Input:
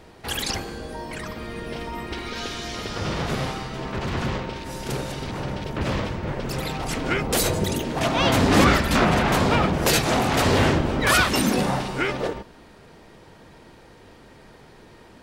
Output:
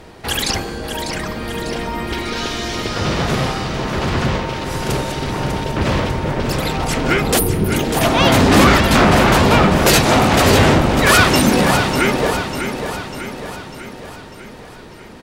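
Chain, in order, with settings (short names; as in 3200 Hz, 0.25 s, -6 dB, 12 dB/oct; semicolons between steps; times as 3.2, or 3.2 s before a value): spectral gain 7.39–7.73, 490–9100 Hz -29 dB; in parallel at -5 dB: sine folder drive 6 dB, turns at -5 dBFS; on the sum: feedback echo 0.597 s, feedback 55%, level -8 dB; gain -1 dB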